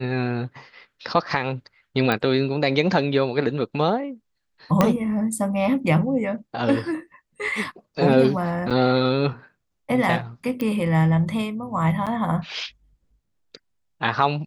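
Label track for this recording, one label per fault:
2.120000	2.120000	pop -9 dBFS
4.810000	4.810000	pop -4 dBFS
8.700000	8.710000	gap 6.4 ms
10.610000	10.610000	pop -14 dBFS
12.060000	12.070000	gap 7.3 ms

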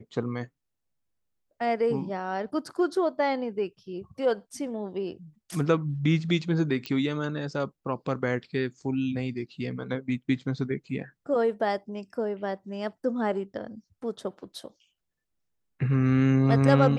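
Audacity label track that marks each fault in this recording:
6.860000	6.860000	pop -18 dBFS

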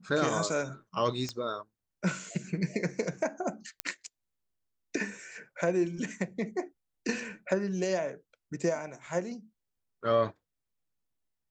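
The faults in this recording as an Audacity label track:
1.290000	1.290000	pop -21 dBFS
3.800000	3.800000	pop -13 dBFS

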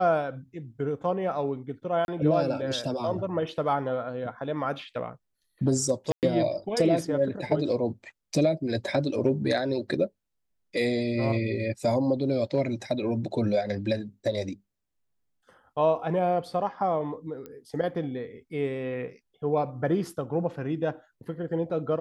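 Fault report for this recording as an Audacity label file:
2.050000	2.080000	gap 31 ms
6.120000	6.230000	gap 0.108 s
17.460000	17.460000	pop -27 dBFS

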